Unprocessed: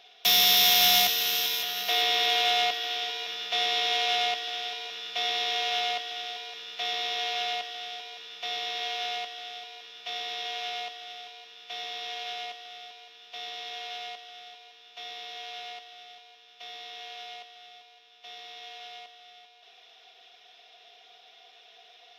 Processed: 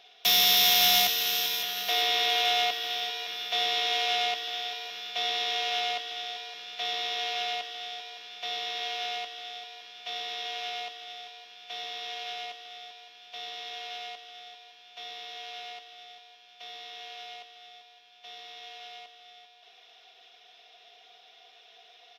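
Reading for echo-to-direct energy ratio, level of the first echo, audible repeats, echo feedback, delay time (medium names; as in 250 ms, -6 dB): -20.5 dB, -22.0 dB, 3, 51%, 1009 ms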